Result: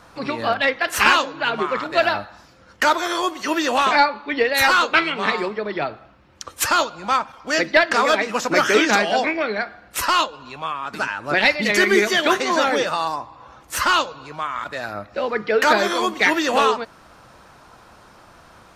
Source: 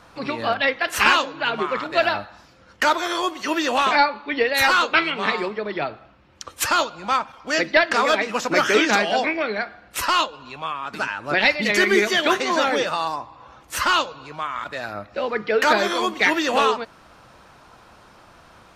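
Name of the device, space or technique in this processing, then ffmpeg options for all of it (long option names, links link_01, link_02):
exciter from parts: -filter_complex "[0:a]asplit=2[link_01][link_02];[link_02]highpass=frequency=3200:poles=1,asoftclip=type=tanh:threshold=-22dB,highpass=frequency=2000:width=0.5412,highpass=frequency=2000:width=1.3066,volume=-10dB[link_03];[link_01][link_03]amix=inputs=2:normalize=0,volume=1.5dB"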